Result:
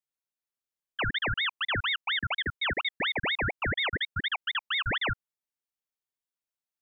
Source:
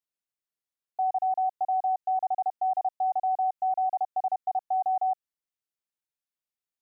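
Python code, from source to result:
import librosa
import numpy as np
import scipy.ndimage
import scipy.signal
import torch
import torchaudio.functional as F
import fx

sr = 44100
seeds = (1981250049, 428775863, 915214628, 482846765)

y = fx.envelope_sharpen(x, sr, power=1.5, at=(3.66, 4.31))
y = fx.ring_lfo(y, sr, carrier_hz=1800.0, swing_pct=65, hz=4.2)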